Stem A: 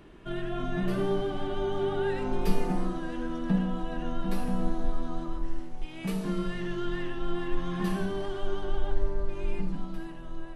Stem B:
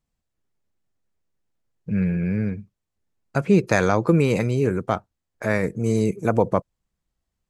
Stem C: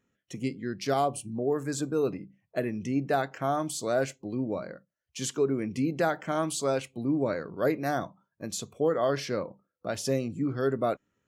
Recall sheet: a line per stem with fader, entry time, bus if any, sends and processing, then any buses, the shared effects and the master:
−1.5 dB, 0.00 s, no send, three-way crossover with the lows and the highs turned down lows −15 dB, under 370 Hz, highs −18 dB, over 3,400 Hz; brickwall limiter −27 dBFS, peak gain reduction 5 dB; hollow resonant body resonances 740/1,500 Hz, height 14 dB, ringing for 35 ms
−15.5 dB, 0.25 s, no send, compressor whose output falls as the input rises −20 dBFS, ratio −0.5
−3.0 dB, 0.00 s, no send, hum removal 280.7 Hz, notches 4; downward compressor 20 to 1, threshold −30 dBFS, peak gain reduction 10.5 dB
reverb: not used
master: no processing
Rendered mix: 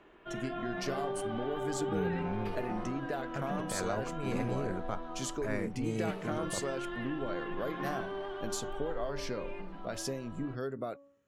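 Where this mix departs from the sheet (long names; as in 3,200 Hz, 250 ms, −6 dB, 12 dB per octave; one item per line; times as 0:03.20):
stem A: missing hollow resonant body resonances 740/1,500 Hz, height 14 dB, ringing for 35 ms
stem B: entry 0.25 s → 0.00 s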